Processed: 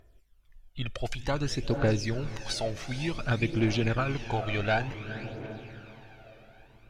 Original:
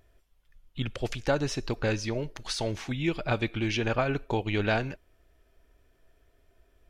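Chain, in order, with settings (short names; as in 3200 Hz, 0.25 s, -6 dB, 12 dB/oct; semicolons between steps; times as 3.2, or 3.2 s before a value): diffused feedback echo 0.469 s, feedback 52%, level -11 dB; phaser 0.55 Hz, delay 1.7 ms, feedback 53%; gain -2.5 dB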